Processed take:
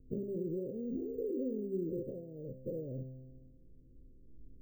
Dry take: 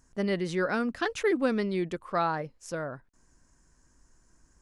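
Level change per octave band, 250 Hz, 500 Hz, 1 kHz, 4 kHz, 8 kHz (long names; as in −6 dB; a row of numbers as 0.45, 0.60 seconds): −7.5 dB, −8.0 dB, below −40 dB, below −40 dB, below −30 dB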